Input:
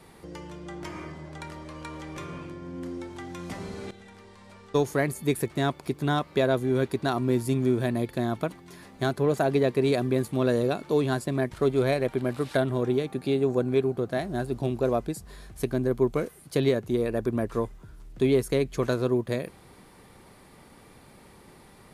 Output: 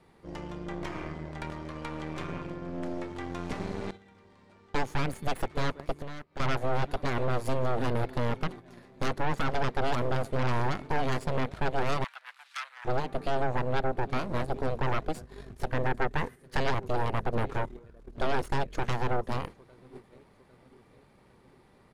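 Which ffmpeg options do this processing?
-filter_complex "[0:a]aecho=1:1:803|1606|2409|3212:0.0794|0.0413|0.0215|0.0112,aeval=exprs='0.266*(cos(1*acos(clip(val(0)/0.266,-1,1)))-cos(1*PI/2))+0.106*(cos(2*acos(clip(val(0)/0.266,-1,1)))-cos(2*PI/2))+0.133*(cos(3*acos(clip(val(0)/0.266,-1,1)))-cos(3*PI/2))+0.0531*(cos(5*acos(clip(val(0)/0.266,-1,1)))-cos(5*PI/2))+0.0473*(cos(6*acos(clip(val(0)/0.266,-1,1)))-cos(6*PI/2))':c=same,alimiter=limit=-22dB:level=0:latency=1:release=235,asoftclip=type=hard:threshold=-25dB,aemphasis=mode=reproduction:type=50kf,asettb=1/sr,asplit=3[a][b][c];[a]atrim=end=5.924[d];[b]atrim=start=5.92:end=6.4,asetpts=PTS-STARTPTS,afade=t=in:d=0.004:c=qsin,afade=t=out:st=0.476:d=0.004:c=qsin,acompressor=threshold=-42dB:ratio=12[e];[c]atrim=start=6.396[f];[d][e]acrossfade=d=0.004:c1=hsin:c2=qsin[g];[g][f]acrossfade=d=0.004:c1=qsin:c2=hsin,asettb=1/sr,asplit=3[h][i][j];[h]atrim=end=15.694[k];[i]atrim=start=15.69:end=16.7,asetpts=PTS-STARTPTS,afade=t=in:d=0.004:c=qsin,afade=t=out:st=1.006:d=0.004:c=qsin,equalizer=f=1.8k:t=o:w=0.36:g=9[l];[j]atrim=start=16.696[m];[k][l]acrossfade=d=0.004:c1=hsin:c2=qsin[n];[n][m]acrossfade=d=0.004:c1=qsin:c2=hsin,acontrast=86,asoftclip=type=tanh:threshold=-17.5dB,asettb=1/sr,asplit=3[o][p][q];[o]atrim=end=12.044[r];[p]atrim=start=12.04:end=12.85,asetpts=PTS-STARTPTS,afade=t=in:d=0.004:c=qsin,afade=t=out:st=0.806:d=0.004:c=qsin,highpass=f=1.3k:w=0.5412,highpass=f=1.3k:w=1.3066[s];[q]atrim=start=12.846[t];[r][s]acrossfade=d=0.004:c1=hsin:c2=qsin[u];[u][t]acrossfade=d=0.004:c1=qsin:c2=hsin,agate=range=-9dB:threshold=-40dB:ratio=16:detection=peak"

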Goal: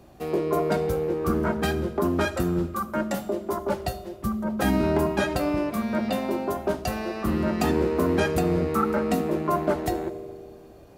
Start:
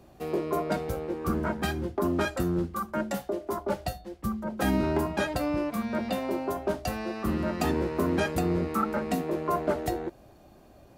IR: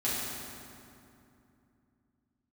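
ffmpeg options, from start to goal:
-filter_complex "[0:a]asplit=2[a][b];[1:a]atrim=start_sample=2205,asetrate=74970,aresample=44100,adelay=70[c];[b][c]afir=irnorm=-1:irlink=0,volume=-19dB[d];[a][d]amix=inputs=2:normalize=0,volume=3dB"

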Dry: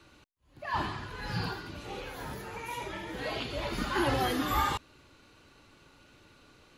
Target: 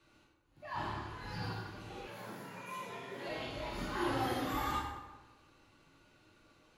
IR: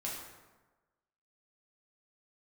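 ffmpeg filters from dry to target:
-filter_complex "[1:a]atrim=start_sample=2205[a];[0:a][a]afir=irnorm=-1:irlink=0,asettb=1/sr,asplit=3[b][c][d];[b]atrim=end=2.074[e];[c]atrim=start=2.07:end=3.29,asetpts=PTS-STARTPTS,afade=t=in:d=0.004:c=qsin,afade=t=out:st=1.216:d=0.004:c=qsin,afreqshift=71[f];[d]atrim=start=3.286[g];[e][f]acrossfade=d=0.004:c1=hsin:c2=qsin[h];[h][g]acrossfade=d=0.004:c1=qsin:c2=hsin,volume=-8dB"

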